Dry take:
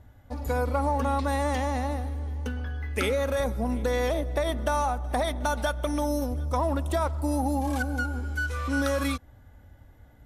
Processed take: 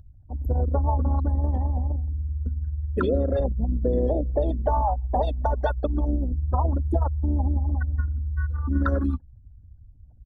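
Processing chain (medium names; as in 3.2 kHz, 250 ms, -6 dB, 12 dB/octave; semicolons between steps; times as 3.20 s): resonances exaggerated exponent 3; Butterworth band-stop 2.2 kHz, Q 2.1; harmony voices -5 st -10 dB, +4 st -17 dB; trim +3.5 dB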